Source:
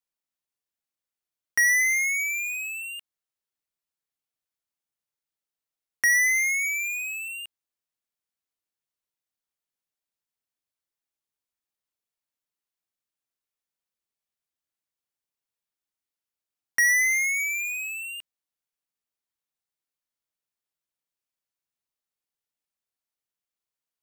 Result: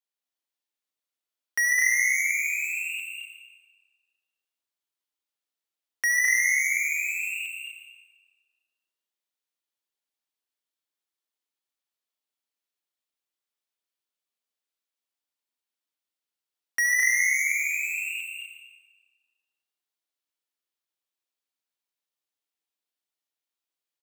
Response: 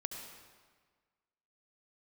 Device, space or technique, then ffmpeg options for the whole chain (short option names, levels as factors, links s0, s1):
stadium PA: -filter_complex "[0:a]highpass=f=240:w=0.5412,highpass=f=240:w=1.3066,equalizer=f=3500:t=o:w=0.85:g=4,aecho=1:1:212.8|244.9:0.562|0.501[s0];[1:a]atrim=start_sample=2205[s1];[s0][s1]afir=irnorm=-1:irlink=0,volume=0.794"